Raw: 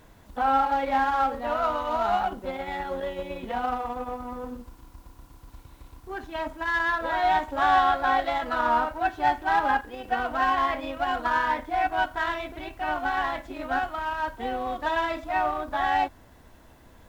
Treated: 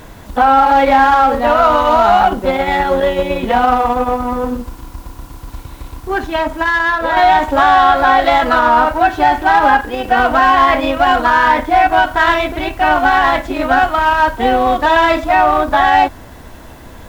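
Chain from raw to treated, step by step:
0:06.18–0:07.17: downward compressor 3 to 1, threshold −31 dBFS, peak gain reduction 7.5 dB
boost into a limiter +18.5 dB
level −1 dB

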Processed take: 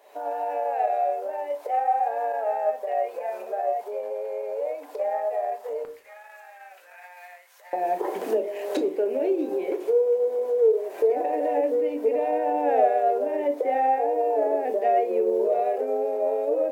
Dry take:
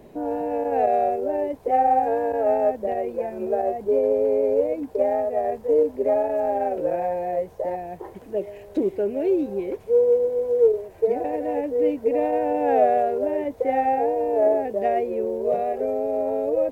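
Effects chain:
camcorder AGC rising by 54 dB per second
high-pass filter 620 Hz 24 dB per octave, from 0:05.85 1,400 Hz, from 0:07.73 340 Hz
convolution reverb RT60 0.45 s, pre-delay 7 ms, DRR 6.5 dB
level −2.5 dB

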